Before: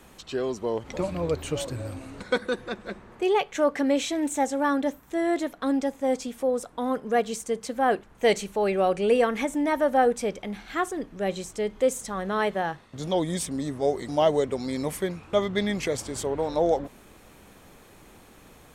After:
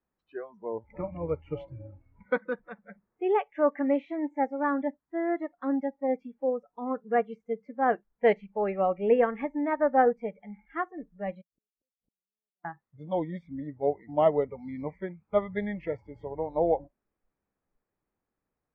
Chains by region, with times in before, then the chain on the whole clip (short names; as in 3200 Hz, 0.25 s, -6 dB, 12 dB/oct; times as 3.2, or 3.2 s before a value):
11.41–12.65 Gaussian blur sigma 14 samples + flipped gate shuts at -34 dBFS, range -40 dB
whole clip: spectral noise reduction 22 dB; LPF 2100 Hz 24 dB/oct; upward expander 1.5:1, over -41 dBFS